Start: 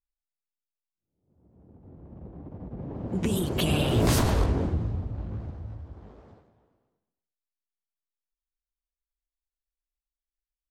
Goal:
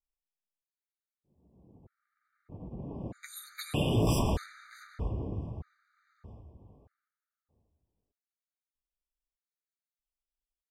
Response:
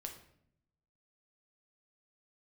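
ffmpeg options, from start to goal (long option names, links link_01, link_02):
-filter_complex "[0:a]flanger=delay=4.3:depth=5.5:regen=-57:speed=0.69:shape=triangular,asplit=2[link_01][link_02];[link_02]adelay=640,lowpass=frequency=1100:poles=1,volume=-7dB,asplit=2[link_03][link_04];[link_04]adelay=640,lowpass=frequency=1100:poles=1,volume=0.24,asplit=2[link_05][link_06];[link_06]adelay=640,lowpass=frequency=1100:poles=1,volume=0.24[link_07];[link_01][link_03][link_05][link_07]amix=inputs=4:normalize=0,afftfilt=real='re*gt(sin(2*PI*0.8*pts/sr)*(1-2*mod(floor(b*sr/1024/1200),2)),0)':imag='im*gt(sin(2*PI*0.8*pts/sr)*(1-2*mod(floor(b*sr/1024/1200),2)),0)':win_size=1024:overlap=0.75"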